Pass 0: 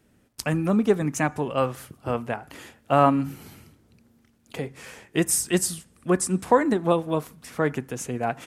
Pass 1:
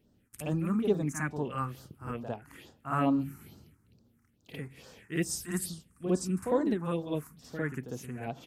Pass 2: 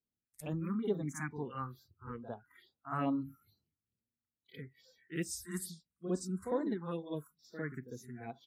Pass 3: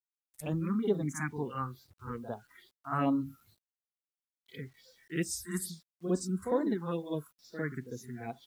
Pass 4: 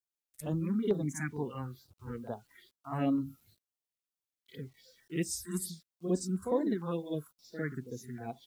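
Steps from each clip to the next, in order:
phaser stages 4, 2.3 Hz, lowest notch 530–2300 Hz; reverse echo 54 ms -7.5 dB; gain -6.5 dB
spectral noise reduction 23 dB; gain -6.5 dB
requantised 12-bit, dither none; gain +4.5 dB
LFO notch saw down 2.2 Hz 720–2500 Hz

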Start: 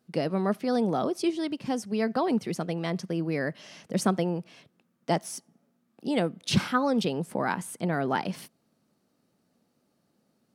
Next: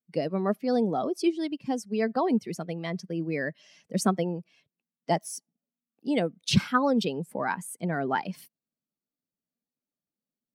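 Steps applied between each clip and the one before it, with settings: per-bin expansion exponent 1.5; gain +3 dB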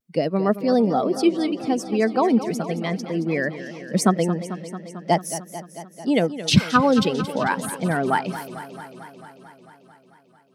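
vibrato 0.43 Hz 24 cents; warbling echo 0.222 s, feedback 73%, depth 84 cents, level -13 dB; gain +6.5 dB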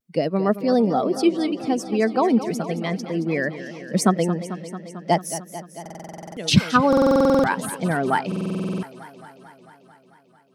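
stuck buffer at 5.81/6.88/8.27, samples 2048, times 11

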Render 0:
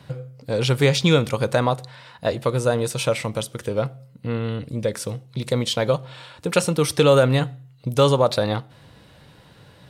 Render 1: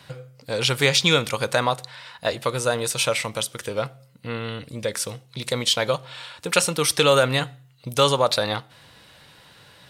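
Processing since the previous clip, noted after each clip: tilt shelf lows -6.5 dB, about 720 Hz; gain -1 dB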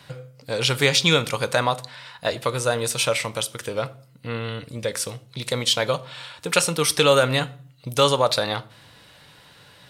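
shoebox room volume 430 m³, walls furnished, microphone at 0.35 m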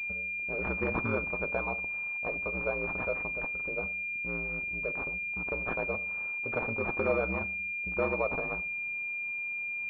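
ring modulator 59 Hz; pulse-width modulation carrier 2400 Hz; gain -8 dB

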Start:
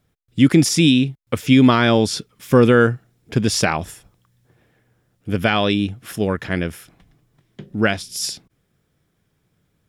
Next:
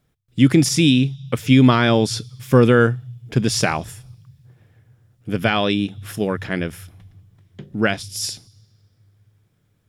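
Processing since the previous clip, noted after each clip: on a send at -12 dB: elliptic band-stop 120–3500 Hz + reverb RT60 2.5 s, pre-delay 3 ms; on the sum: gain -1 dB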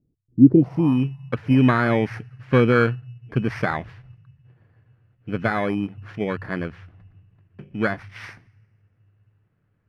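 FFT order left unsorted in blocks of 16 samples; low-pass sweep 310 Hz -> 1800 Hz, 0.44–0.98; gain -4 dB

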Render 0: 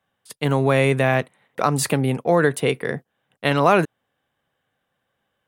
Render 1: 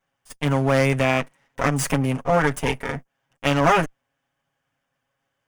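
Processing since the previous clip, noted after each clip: minimum comb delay 7.3 ms; thirty-one-band EQ 400 Hz -6 dB, 4000 Hz -10 dB, 6300 Hz +4 dB, 12500 Hz -6 dB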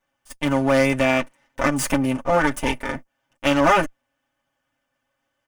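comb 3.4 ms, depth 54%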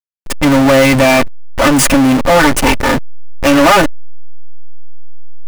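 backlash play -33.5 dBFS; power-law curve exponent 0.35; gain +2 dB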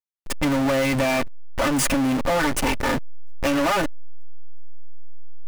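compressor, threshold -11 dBFS, peak gain reduction 6 dB; gain -8 dB

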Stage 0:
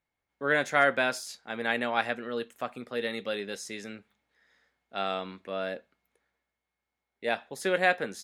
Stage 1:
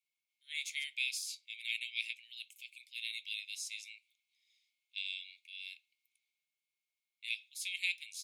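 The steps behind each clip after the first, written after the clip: Chebyshev high-pass 2200 Hz, order 8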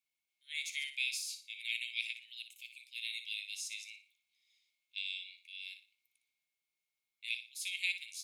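flutter echo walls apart 10.1 m, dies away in 0.35 s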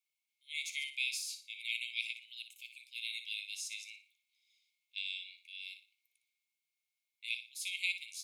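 brick-wall FIR high-pass 2000 Hz

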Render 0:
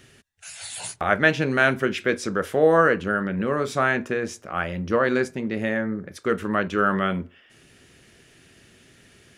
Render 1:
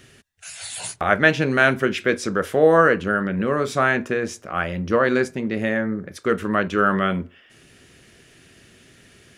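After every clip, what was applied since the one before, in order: notch 860 Hz, Q 23; gain +2.5 dB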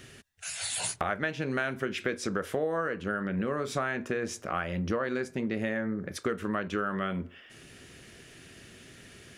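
compressor 10:1, threshold -27 dBFS, peak gain reduction 17.5 dB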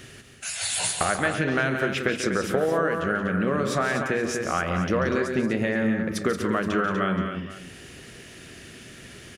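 tapped delay 0.14/0.177/0.244/0.474 s -11/-8.5/-8/-16.5 dB; gain +5.5 dB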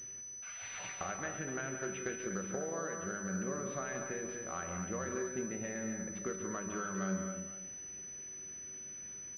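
resonator 190 Hz, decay 0.84 s, harmonics all, mix 80%; pulse-width modulation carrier 6000 Hz; gain -3.5 dB

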